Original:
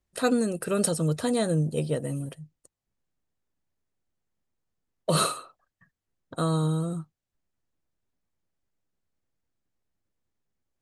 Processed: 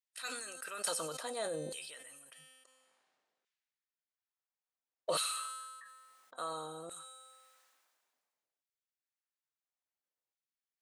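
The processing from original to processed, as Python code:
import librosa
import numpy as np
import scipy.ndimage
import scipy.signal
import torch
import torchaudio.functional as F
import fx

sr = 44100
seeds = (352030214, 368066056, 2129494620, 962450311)

y = fx.lowpass(x, sr, hz=fx.line((2.4, 3700.0), (5.13, 8200.0)), slope=12, at=(2.4, 5.13), fade=0.02)
y = fx.comb_fb(y, sr, f0_hz=260.0, decay_s=0.99, harmonics='all', damping=0.0, mix_pct=70)
y = fx.filter_lfo_highpass(y, sr, shape='saw_down', hz=0.58, low_hz=500.0, high_hz=2400.0, q=1.1)
y = fx.sustainer(y, sr, db_per_s=31.0)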